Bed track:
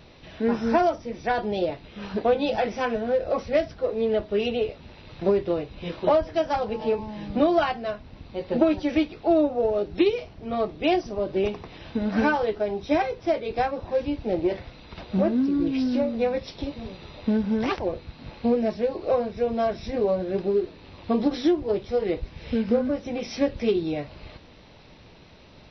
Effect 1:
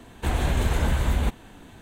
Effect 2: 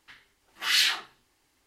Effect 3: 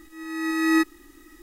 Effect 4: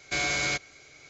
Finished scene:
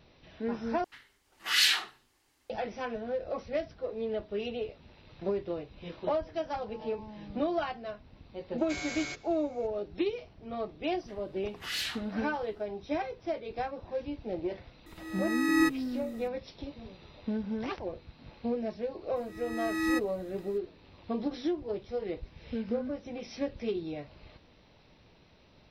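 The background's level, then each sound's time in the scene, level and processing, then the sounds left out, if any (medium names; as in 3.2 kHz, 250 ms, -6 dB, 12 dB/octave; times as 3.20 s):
bed track -10 dB
0.84 s: replace with 2 -1.5 dB
8.58 s: add 4 -11 dB + de-hum 172.8 Hz, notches 36
11.00 s: add 2 -17 dB + sine folder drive 3 dB, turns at -10.5 dBFS
14.86 s: add 3 -5 dB
19.16 s: add 3 -8.5 dB
not used: 1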